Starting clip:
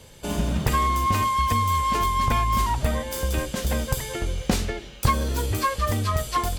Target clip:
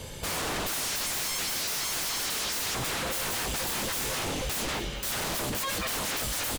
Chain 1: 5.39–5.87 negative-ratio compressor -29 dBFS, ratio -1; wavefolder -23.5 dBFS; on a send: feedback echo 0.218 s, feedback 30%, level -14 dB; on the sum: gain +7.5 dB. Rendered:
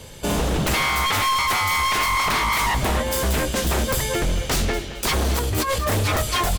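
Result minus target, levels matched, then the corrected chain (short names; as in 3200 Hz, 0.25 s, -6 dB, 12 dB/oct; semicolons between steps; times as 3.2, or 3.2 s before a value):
wavefolder: distortion -28 dB
5.39–5.87 negative-ratio compressor -29 dBFS, ratio -1; wavefolder -34 dBFS; on a send: feedback echo 0.218 s, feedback 30%, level -14 dB; on the sum: gain +7.5 dB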